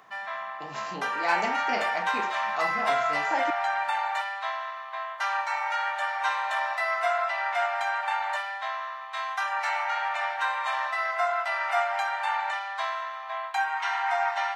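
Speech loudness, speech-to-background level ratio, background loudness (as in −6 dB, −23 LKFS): −33.0 LKFS, −4.5 dB, −28.5 LKFS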